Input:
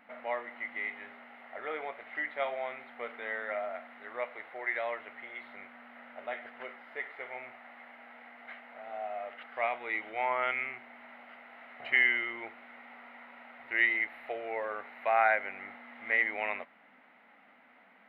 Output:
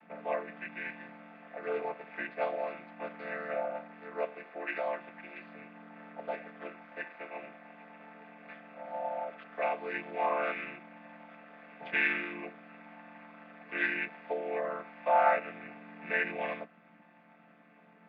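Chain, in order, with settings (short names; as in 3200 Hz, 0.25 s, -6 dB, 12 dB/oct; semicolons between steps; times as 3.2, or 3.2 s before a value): chord vocoder minor triad, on D3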